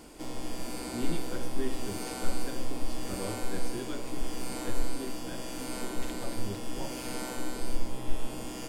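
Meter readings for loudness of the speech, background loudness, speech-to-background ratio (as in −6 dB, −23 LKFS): −42.5 LKFS, −38.5 LKFS, −4.0 dB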